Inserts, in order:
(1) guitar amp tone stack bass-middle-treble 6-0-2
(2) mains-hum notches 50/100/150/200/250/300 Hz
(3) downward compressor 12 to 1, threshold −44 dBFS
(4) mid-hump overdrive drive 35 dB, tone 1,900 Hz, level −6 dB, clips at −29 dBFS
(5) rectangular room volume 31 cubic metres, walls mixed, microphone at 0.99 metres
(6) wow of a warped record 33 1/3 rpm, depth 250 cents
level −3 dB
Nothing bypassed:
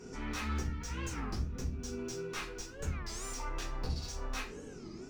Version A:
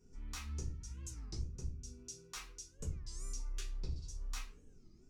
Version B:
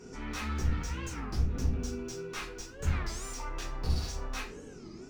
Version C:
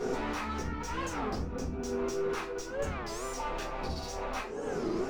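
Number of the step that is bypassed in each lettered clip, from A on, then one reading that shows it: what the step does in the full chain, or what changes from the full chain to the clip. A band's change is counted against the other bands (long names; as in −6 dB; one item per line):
4, 8 kHz band +9.5 dB
3, average gain reduction 5.0 dB
1, 500 Hz band +8.5 dB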